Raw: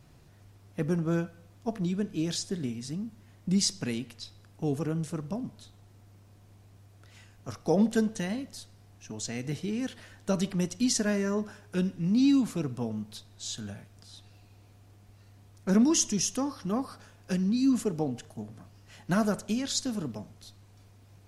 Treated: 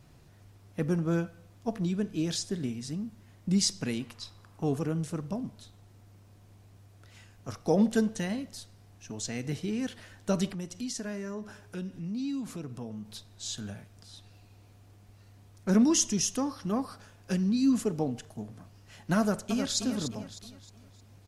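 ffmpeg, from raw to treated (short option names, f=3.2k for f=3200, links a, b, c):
-filter_complex "[0:a]asettb=1/sr,asplit=3[a][b][c];[a]atrim=end=4.004[d];[b]atrim=start=4:end=4.78,asetpts=PTS-STARTPTS,afade=t=in:d=0.004:c=qsin,afade=t=out:st=0.776:d=0.004:c=qsin,equalizer=f=1.1k:w=1.8:g=9.5[e];[c]atrim=start=4.776[f];[d][e]acrossfade=d=0.004:c1=hsin:c2=qsin[g];[g][f]acrossfade=d=0.004:c1=qsin:c2=hsin,asettb=1/sr,asplit=3[h][i][j];[h]atrim=end=10.534[k];[i]atrim=start=10.53:end=13.06,asetpts=PTS-STARTPTS,afade=t=in:d=0.004:c=qsin,afade=t=out:st=2.526:d=0.004:c=qsin,acompressor=threshold=-40dB:ratio=2:attack=3.2:release=140:knee=1:detection=peak[l];[j]atrim=start=13.056[m];[k][l]acrossfade=d=0.004:c1=hsin:c2=qsin[n];[n][m]acrossfade=d=0.004:c1=qsin:c2=hsin,asplit=2[o][p];[p]afade=t=in:st=19.19:d=0.01,afade=t=out:st=19.76:d=0.01,aecho=0:1:310|620|930|1240|1550:0.446684|0.178673|0.0714694|0.0285877|0.0114351[q];[o][q]amix=inputs=2:normalize=0"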